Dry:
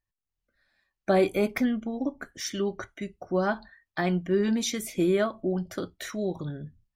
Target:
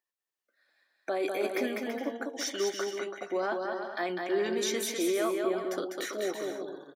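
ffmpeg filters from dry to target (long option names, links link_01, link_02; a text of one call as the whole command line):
ffmpeg -i in.wav -filter_complex "[0:a]highpass=frequency=330:width=0.5412,highpass=frequency=330:width=1.3066,alimiter=limit=-23dB:level=0:latency=1:release=13,asplit=2[link_01][link_02];[link_02]aecho=0:1:200|330|414.5|469.4|505.1:0.631|0.398|0.251|0.158|0.1[link_03];[link_01][link_03]amix=inputs=2:normalize=0" out.wav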